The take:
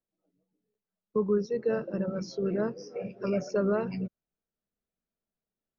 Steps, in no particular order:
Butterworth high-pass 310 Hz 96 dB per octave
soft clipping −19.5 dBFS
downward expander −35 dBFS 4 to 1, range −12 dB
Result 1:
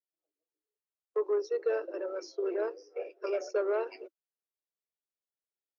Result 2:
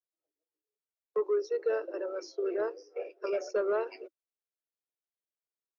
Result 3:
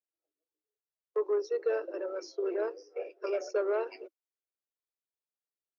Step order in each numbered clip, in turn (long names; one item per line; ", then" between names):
soft clipping, then downward expander, then Butterworth high-pass
downward expander, then Butterworth high-pass, then soft clipping
downward expander, then soft clipping, then Butterworth high-pass